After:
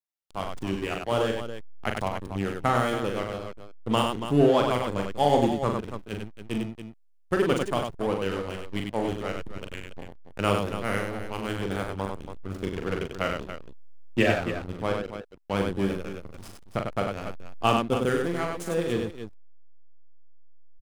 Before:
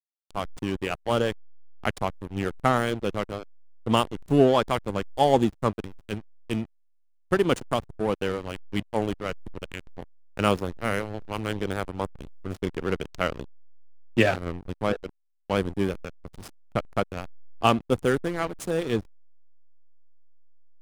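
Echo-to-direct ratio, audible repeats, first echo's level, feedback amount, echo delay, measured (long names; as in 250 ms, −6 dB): −1.0 dB, 3, −5.0 dB, repeats not evenly spaced, 41 ms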